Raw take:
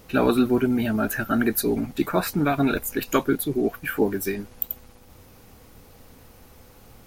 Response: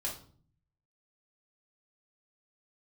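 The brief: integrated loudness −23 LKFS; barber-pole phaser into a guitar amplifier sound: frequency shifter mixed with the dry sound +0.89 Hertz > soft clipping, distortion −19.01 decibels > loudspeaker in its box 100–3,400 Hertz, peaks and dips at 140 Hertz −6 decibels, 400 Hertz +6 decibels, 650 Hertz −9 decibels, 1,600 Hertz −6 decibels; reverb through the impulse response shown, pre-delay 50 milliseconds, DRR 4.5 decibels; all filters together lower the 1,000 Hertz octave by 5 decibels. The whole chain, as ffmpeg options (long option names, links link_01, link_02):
-filter_complex "[0:a]equalizer=frequency=1000:width_type=o:gain=-3.5,asplit=2[link_01][link_02];[1:a]atrim=start_sample=2205,adelay=50[link_03];[link_02][link_03]afir=irnorm=-1:irlink=0,volume=-6dB[link_04];[link_01][link_04]amix=inputs=2:normalize=0,asplit=2[link_05][link_06];[link_06]afreqshift=0.89[link_07];[link_05][link_07]amix=inputs=2:normalize=1,asoftclip=threshold=-15.5dB,highpass=100,equalizer=frequency=140:width_type=q:width=4:gain=-6,equalizer=frequency=400:width_type=q:width=4:gain=6,equalizer=frequency=650:width_type=q:width=4:gain=-9,equalizer=frequency=1600:width_type=q:width=4:gain=-6,lowpass=frequency=3400:width=0.5412,lowpass=frequency=3400:width=1.3066,volume=4.5dB"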